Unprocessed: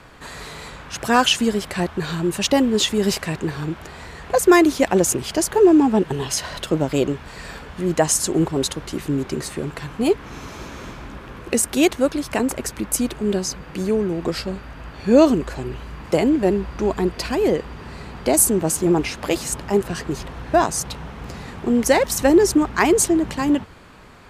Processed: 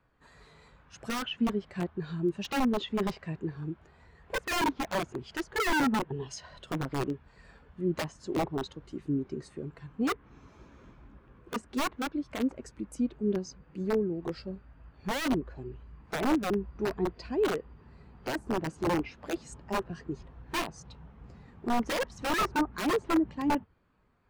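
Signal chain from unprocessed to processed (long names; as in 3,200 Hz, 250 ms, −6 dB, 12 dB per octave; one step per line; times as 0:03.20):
treble cut that deepens with the level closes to 2,200 Hz, closed at −13 dBFS
wrap-around overflow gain 12 dB
every bin expanded away from the loudest bin 1.5 to 1
level −6 dB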